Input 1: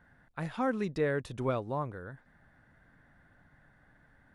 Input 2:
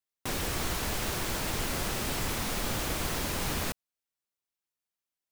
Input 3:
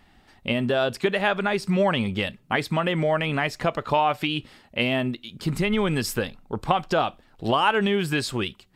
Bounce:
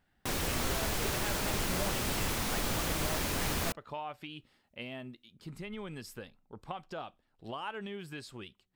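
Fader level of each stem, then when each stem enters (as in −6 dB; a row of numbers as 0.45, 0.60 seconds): −16.0, −1.0, −19.0 decibels; 0.00, 0.00, 0.00 seconds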